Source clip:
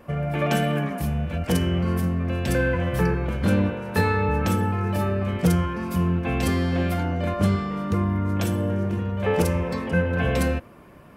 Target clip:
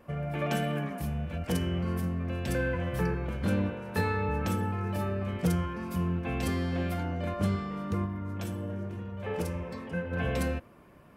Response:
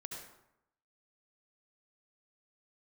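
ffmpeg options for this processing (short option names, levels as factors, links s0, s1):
-filter_complex "[0:a]asplit=3[s0][s1][s2];[s0]afade=t=out:st=8.05:d=0.02[s3];[s1]flanger=delay=5.6:depth=5.8:regen=-65:speed=1.1:shape=triangular,afade=t=in:st=8.05:d=0.02,afade=t=out:st=10.11:d=0.02[s4];[s2]afade=t=in:st=10.11:d=0.02[s5];[s3][s4][s5]amix=inputs=3:normalize=0,volume=0.422"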